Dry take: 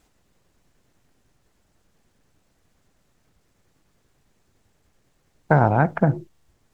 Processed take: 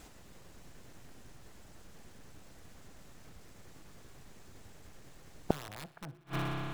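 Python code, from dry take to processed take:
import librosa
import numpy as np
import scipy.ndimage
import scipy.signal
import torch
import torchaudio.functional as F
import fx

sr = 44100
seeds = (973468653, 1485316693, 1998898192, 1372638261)

p1 = (np.mod(10.0 ** (9.0 / 20.0) * x + 1.0, 2.0) - 1.0) / 10.0 ** (9.0 / 20.0)
p2 = p1 + fx.echo_thinned(p1, sr, ms=61, feedback_pct=66, hz=420.0, wet_db=-20.5, dry=0)
p3 = fx.rev_spring(p2, sr, rt60_s=2.9, pass_ms=(30,), chirp_ms=40, drr_db=18.5)
p4 = fx.gate_flip(p3, sr, shuts_db=-26.0, range_db=-37)
y = F.gain(torch.from_numpy(p4), 10.0).numpy()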